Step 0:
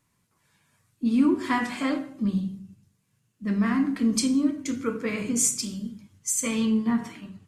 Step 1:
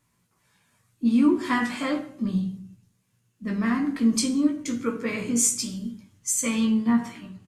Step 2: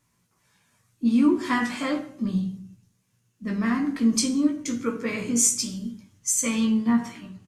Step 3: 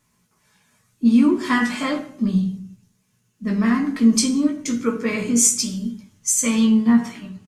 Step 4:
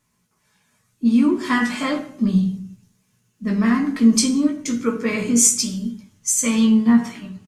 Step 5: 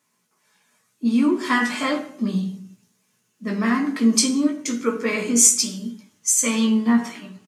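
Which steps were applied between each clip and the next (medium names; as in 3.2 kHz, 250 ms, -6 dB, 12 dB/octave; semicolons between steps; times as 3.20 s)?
doubling 17 ms -5 dB
peaking EQ 5.9 kHz +4 dB 0.41 oct
comb 4.7 ms, depth 34%; trim +4 dB
gain riding within 3 dB 2 s
high-pass 270 Hz 12 dB/octave; trim +1 dB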